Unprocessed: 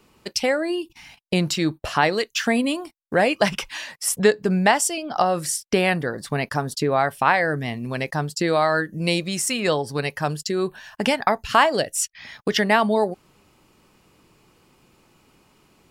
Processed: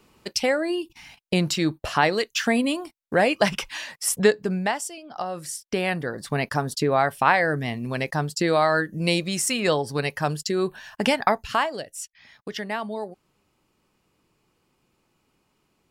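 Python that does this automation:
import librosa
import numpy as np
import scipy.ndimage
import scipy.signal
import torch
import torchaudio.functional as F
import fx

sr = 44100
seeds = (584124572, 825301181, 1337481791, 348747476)

y = fx.gain(x, sr, db=fx.line((4.26, -1.0), (4.99, -12.5), (6.39, -0.5), (11.31, -0.5), (11.81, -11.5)))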